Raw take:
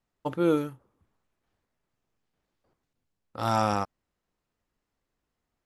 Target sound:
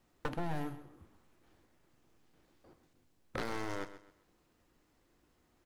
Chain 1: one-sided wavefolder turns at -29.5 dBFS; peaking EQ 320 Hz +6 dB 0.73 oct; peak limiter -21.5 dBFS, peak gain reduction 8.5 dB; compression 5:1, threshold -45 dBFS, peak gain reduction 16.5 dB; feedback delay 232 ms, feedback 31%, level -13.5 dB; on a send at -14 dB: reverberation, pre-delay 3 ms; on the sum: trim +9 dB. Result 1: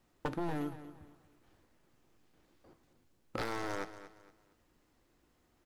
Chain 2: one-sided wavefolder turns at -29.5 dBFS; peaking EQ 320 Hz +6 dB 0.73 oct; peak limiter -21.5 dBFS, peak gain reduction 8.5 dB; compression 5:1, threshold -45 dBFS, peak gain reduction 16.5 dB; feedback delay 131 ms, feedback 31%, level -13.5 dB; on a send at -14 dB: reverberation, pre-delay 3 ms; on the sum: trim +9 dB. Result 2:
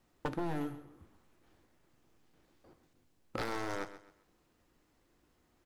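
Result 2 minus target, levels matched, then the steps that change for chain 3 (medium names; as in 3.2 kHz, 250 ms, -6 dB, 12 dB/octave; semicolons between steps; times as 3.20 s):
one-sided wavefolder: distortion -12 dB
change: one-sided wavefolder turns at -36.5 dBFS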